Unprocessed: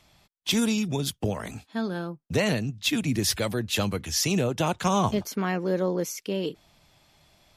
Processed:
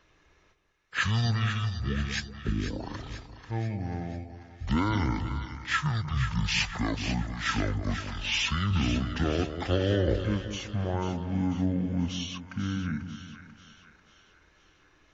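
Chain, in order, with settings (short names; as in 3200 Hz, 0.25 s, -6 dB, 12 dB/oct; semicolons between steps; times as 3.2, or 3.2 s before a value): speed mistake 15 ips tape played at 7.5 ips; split-band echo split 1000 Hz, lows 0.19 s, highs 0.491 s, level -9 dB; gain -3 dB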